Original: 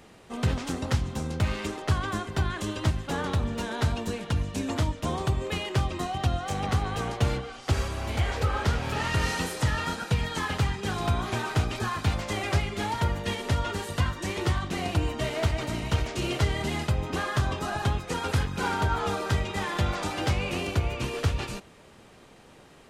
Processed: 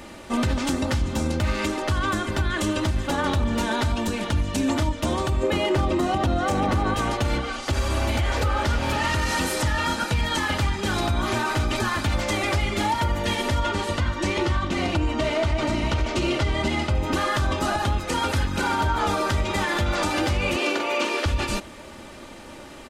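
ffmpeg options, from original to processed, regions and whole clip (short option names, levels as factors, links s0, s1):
-filter_complex "[0:a]asettb=1/sr,asplit=3[s0][s1][s2];[s0]atrim=end=5.434[s3];[s1]atrim=start=5.43:end=6.94,asetpts=PTS-STARTPTS,afade=t=in:d=0.004:c=qsin,afade=t=out:st=1.506:d=0.004:c=qsin,equalizer=f=350:w=0.31:g=9.5,asoftclip=type=hard:threshold=0.2[s4];[s2]atrim=start=6.936[s5];[s3][s4]acrossfade=d=0.004:c1=hsin:c2=qsin[s6];[s6][s5]acrossfade=d=0.004:c1=qsin:c2=hsin,asettb=1/sr,asplit=3[s7][s8][s9];[s7]atrim=end=13.694[s10];[s8]atrim=start=13.69:end=16.95,asetpts=PTS-STARTPTS,afade=t=in:d=0.004:c=qsin,afade=t=out:st=3.256:d=0.004:c=qsin,adynamicsmooth=sensitivity=1.5:basefreq=7100,bandreject=f=1700:w=16[s11];[s9]atrim=start=16.946[s12];[s10][s11]acrossfade=d=0.004:c1=hsin:c2=qsin[s13];[s13][s12]acrossfade=d=0.004:c1=qsin:c2=hsin,asettb=1/sr,asplit=3[s14][s15][s16];[s14]atrim=end=20.564[s17];[s15]atrim=start=20.56:end=21.26,asetpts=PTS-STARTPTS,afade=t=in:d=0.004:c=qsin,afade=t=out:st=0.696:d=0.004:c=qsin,acrossover=split=7200[s18][s19];[s19]acompressor=threshold=0.001:ratio=4:attack=1:release=60[s20];[s18][s20]amix=inputs=2:normalize=0,highpass=f=290:w=0.5412,highpass=f=290:w=1.3066,asplit=2[s21][s22];[s22]adelay=44,volume=0.473[s23];[s21][s23]amix=inputs=2:normalize=0,atrim=end_sample=30870[s24];[s16]atrim=start=21.256[s25];[s17][s24]acrossfade=d=0.004:c1=hsin:c2=qsin[s26];[s26][s25]acrossfade=d=0.004:c1=qsin:c2=hsin,aecho=1:1:3.4:0.54,acontrast=77,alimiter=limit=0.126:level=0:latency=1:release=177,volume=1.5"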